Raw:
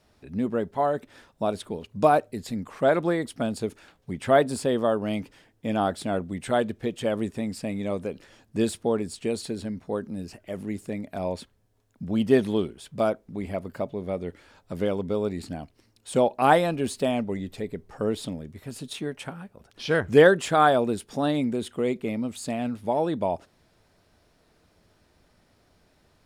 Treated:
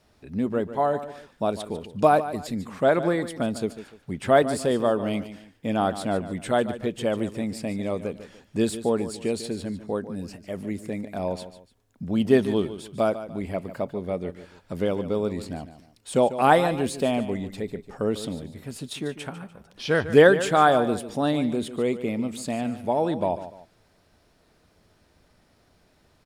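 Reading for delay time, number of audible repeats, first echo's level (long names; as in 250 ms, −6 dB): 147 ms, 2, −13.0 dB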